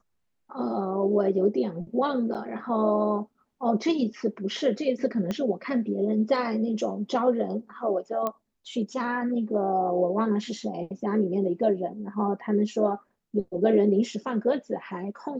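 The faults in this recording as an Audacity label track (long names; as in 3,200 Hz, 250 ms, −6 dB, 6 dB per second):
2.340000	2.350000	drop-out 7.2 ms
5.310000	5.310000	click −17 dBFS
8.270000	8.270000	click −15 dBFS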